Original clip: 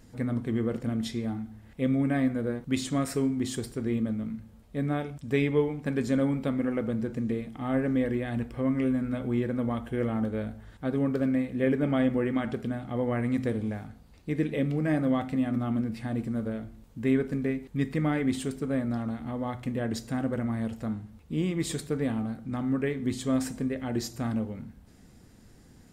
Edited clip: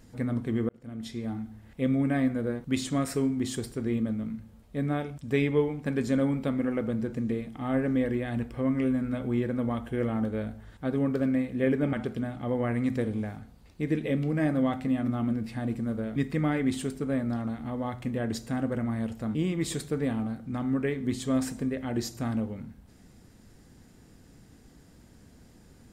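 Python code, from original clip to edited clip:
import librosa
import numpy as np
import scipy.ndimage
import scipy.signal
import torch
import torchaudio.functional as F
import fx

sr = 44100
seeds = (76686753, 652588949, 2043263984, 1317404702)

y = fx.edit(x, sr, fx.fade_in_span(start_s=0.69, length_s=0.72),
    fx.cut(start_s=11.93, length_s=0.48),
    fx.cut(start_s=16.64, length_s=1.13),
    fx.cut(start_s=20.96, length_s=0.38), tone=tone)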